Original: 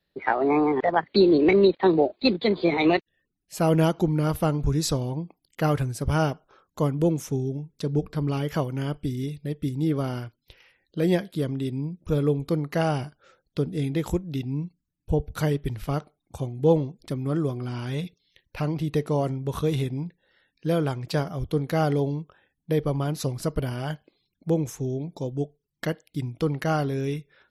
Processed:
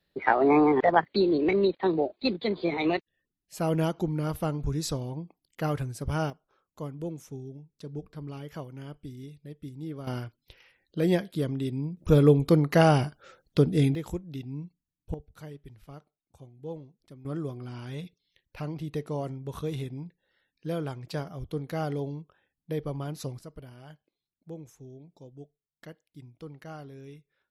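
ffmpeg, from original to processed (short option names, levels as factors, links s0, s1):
-af "asetnsamples=n=441:p=0,asendcmd='1.05 volume volume -6dB;6.3 volume volume -13dB;10.07 volume volume -2dB;11.97 volume volume 4.5dB;13.95 volume volume -8dB;15.14 volume volume -19dB;17.25 volume volume -8dB;23.39 volume volume -18dB',volume=1.12"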